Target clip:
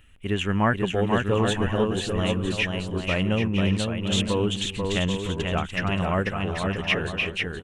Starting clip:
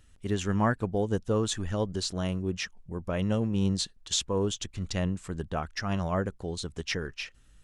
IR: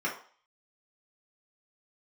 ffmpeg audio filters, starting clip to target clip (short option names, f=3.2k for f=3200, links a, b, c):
-af "crystalizer=i=2:c=0,highshelf=f=3.7k:t=q:w=3:g=-11,aecho=1:1:490|784|960.4|1066|1130:0.631|0.398|0.251|0.158|0.1,volume=3dB"